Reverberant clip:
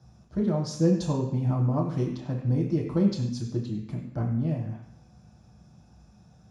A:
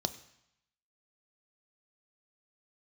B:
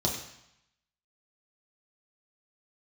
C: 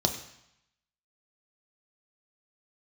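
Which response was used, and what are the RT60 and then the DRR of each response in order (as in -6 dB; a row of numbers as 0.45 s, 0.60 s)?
B; 0.80 s, 0.80 s, 0.80 s; 10.5 dB, -2.0 dB, 4.5 dB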